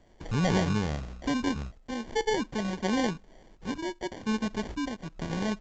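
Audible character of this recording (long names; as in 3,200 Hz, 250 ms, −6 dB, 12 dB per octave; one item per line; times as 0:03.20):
sample-and-hold tremolo
aliases and images of a low sample rate 1,300 Hz, jitter 0%
mu-law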